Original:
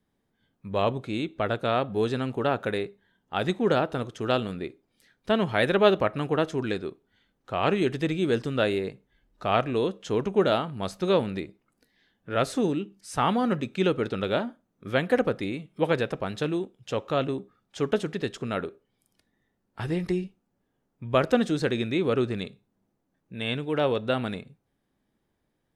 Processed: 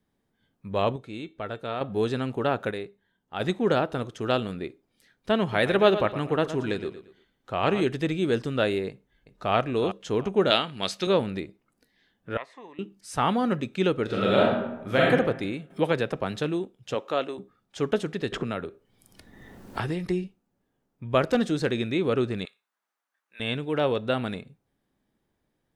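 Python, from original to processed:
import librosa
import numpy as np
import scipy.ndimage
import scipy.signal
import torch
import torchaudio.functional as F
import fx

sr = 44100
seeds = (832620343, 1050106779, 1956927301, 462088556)

y = fx.comb_fb(x, sr, f0_hz=450.0, decay_s=0.21, harmonics='all', damping=0.0, mix_pct=60, at=(0.96, 1.81))
y = fx.echo_feedback(y, sr, ms=115, feedback_pct=32, wet_db=-12, at=(5.41, 7.84))
y = fx.echo_throw(y, sr, start_s=8.89, length_s=0.65, ms=370, feedback_pct=30, wet_db=-10.0)
y = fx.weighting(y, sr, curve='D', at=(10.5, 11.07))
y = fx.double_bandpass(y, sr, hz=1400.0, octaves=0.9, at=(12.37, 12.79))
y = fx.reverb_throw(y, sr, start_s=14.05, length_s=1.04, rt60_s=0.93, drr_db=-5.0)
y = fx.band_squash(y, sr, depth_pct=40, at=(15.7, 16.4))
y = fx.highpass(y, sr, hz=fx.line((16.94, 190.0), (17.37, 500.0)), slope=12, at=(16.94, 17.37), fade=0.02)
y = fx.band_squash(y, sr, depth_pct=100, at=(18.32, 20.06))
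y = fx.overload_stage(y, sr, gain_db=15.5, at=(21.3, 21.81))
y = fx.highpass_res(y, sr, hz=1300.0, q=1.6, at=(22.45, 23.4))
y = fx.edit(y, sr, fx.clip_gain(start_s=2.71, length_s=0.69, db=-5.0), tone=tone)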